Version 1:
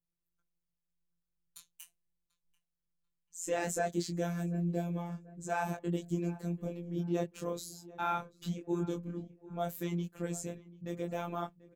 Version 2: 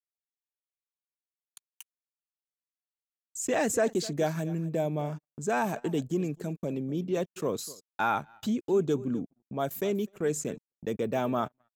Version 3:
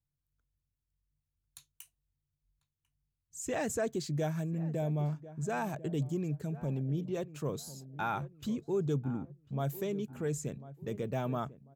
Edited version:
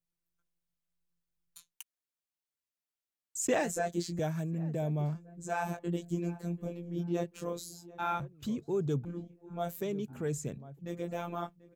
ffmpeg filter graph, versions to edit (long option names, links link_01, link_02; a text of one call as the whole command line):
ffmpeg -i take0.wav -i take1.wav -i take2.wav -filter_complex "[2:a]asplit=3[link_01][link_02][link_03];[0:a]asplit=5[link_04][link_05][link_06][link_07][link_08];[link_04]atrim=end=1.79[link_09];[1:a]atrim=start=1.55:end=3.76[link_10];[link_05]atrim=start=3.52:end=4.192[link_11];[link_01]atrim=start=4.188:end=5.152[link_12];[link_06]atrim=start=5.148:end=8.202[link_13];[link_02]atrim=start=8.198:end=9.052[link_14];[link_07]atrim=start=9.048:end=9.812[link_15];[link_03]atrim=start=9.808:end=10.792[link_16];[link_08]atrim=start=10.788[link_17];[link_09][link_10]acrossfade=duration=0.24:curve1=tri:curve2=tri[link_18];[link_18][link_11]acrossfade=duration=0.24:curve1=tri:curve2=tri[link_19];[link_19][link_12]acrossfade=duration=0.004:curve1=hsin:curve2=hsin[link_20];[link_20][link_13]acrossfade=duration=0.004:curve1=hsin:curve2=hsin[link_21];[link_21][link_14]acrossfade=duration=0.004:curve1=hsin:curve2=hsin[link_22];[link_22][link_15]acrossfade=duration=0.004:curve1=hsin:curve2=hsin[link_23];[link_23][link_16]acrossfade=duration=0.004:curve1=hsin:curve2=hsin[link_24];[link_24][link_17]acrossfade=duration=0.004:curve1=hsin:curve2=hsin" out.wav